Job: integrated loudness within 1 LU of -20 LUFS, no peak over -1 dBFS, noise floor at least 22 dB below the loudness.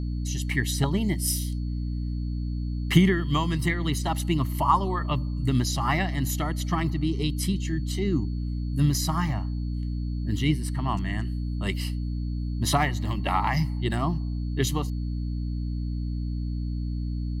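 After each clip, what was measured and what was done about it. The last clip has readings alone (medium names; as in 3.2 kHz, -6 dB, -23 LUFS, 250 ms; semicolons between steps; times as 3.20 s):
hum 60 Hz; highest harmonic 300 Hz; hum level -27 dBFS; steady tone 4.4 kHz; tone level -56 dBFS; loudness -27.0 LUFS; peak level -5.5 dBFS; loudness target -20.0 LUFS
-> de-hum 60 Hz, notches 5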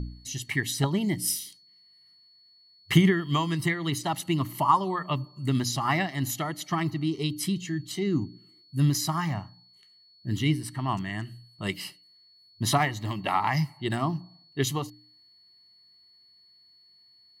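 hum not found; steady tone 4.4 kHz; tone level -56 dBFS
-> band-stop 4.4 kHz, Q 30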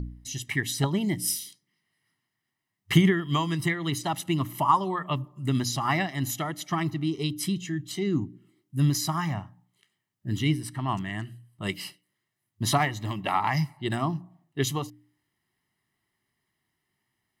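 steady tone not found; loudness -28.0 LUFS; peak level -6.5 dBFS; loudness target -20.0 LUFS
-> trim +8 dB; peak limiter -1 dBFS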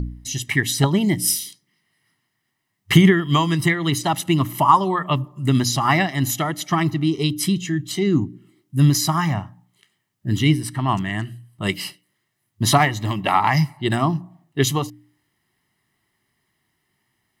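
loudness -20.0 LUFS; peak level -1.0 dBFS; noise floor -74 dBFS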